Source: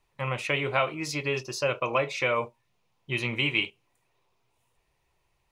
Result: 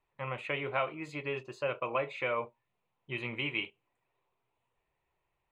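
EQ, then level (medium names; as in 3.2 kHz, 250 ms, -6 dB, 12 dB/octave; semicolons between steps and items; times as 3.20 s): boxcar filter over 8 samples; bass shelf 200 Hz -6.5 dB; -5.0 dB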